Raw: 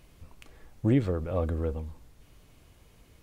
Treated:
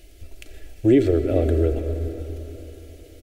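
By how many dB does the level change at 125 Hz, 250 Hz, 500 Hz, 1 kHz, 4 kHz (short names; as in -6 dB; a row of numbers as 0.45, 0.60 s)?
+6.0, +9.0, +12.0, +2.5, +9.0 dB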